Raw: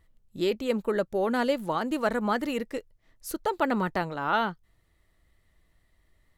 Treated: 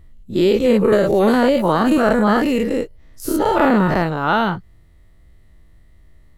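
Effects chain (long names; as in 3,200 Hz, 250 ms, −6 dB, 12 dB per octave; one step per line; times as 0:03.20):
every bin's largest magnitude spread in time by 120 ms
low-shelf EQ 430 Hz +11 dB
0:00.92–0:01.98: multiband upward and downward compressor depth 100%
level +2 dB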